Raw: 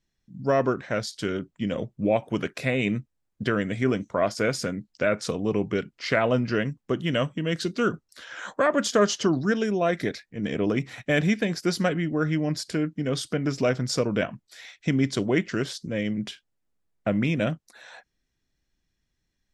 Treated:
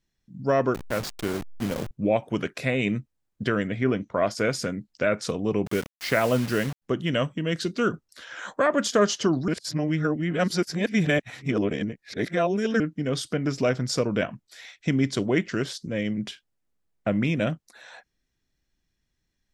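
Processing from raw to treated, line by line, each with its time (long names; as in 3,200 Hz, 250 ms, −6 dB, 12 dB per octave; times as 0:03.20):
0:00.74–0:01.91: hold until the input has moved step −28.5 dBFS
0:03.67–0:04.15: low-pass filter 3,600 Hz
0:05.66–0:06.82: bit-depth reduction 6 bits, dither none
0:09.48–0:12.80: reverse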